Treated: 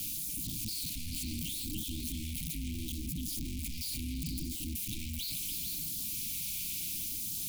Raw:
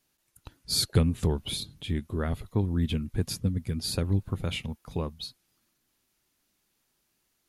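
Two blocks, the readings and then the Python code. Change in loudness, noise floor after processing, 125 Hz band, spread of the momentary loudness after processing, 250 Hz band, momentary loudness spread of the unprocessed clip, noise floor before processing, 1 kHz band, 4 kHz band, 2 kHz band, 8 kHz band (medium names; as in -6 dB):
-6.0 dB, -39 dBFS, -12.5 dB, 4 LU, -9.0 dB, 10 LU, -75 dBFS, under -40 dB, -5.0 dB, -5.0 dB, +2.5 dB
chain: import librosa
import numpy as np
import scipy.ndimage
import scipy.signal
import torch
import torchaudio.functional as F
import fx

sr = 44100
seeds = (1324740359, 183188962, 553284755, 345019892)

p1 = np.sign(x) * np.sqrt(np.mean(np.square(x)))
p2 = fx.high_shelf(p1, sr, hz=7900.0, db=8.5)
p3 = fx.level_steps(p2, sr, step_db=17)
p4 = p3 * np.sin(2.0 * np.pi * 160.0 * np.arange(len(p3)) / sr)
p5 = fx.low_shelf(p4, sr, hz=180.0, db=3.0)
p6 = fx.filter_lfo_notch(p5, sr, shape='sine', hz=0.73, low_hz=330.0, high_hz=2900.0, q=0.97)
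p7 = scipy.signal.sosfilt(scipy.signal.cheby1(5, 1.0, [320.0, 2300.0], 'bandstop', fs=sr, output='sos'), p6)
y = p7 + fx.echo_stepped(p7, sr, ms=146, hz=1500.0, octaves=0.7, feedback_pct=70, wet_db=0.0, dry=0)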